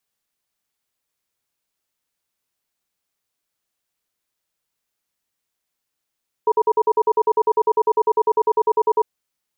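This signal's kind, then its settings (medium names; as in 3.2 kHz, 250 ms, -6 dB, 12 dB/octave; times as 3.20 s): cadence 436 Hz, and 955 Hz, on 0.05 s, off 0.05 s, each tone -15.5 dBFS 2.60 s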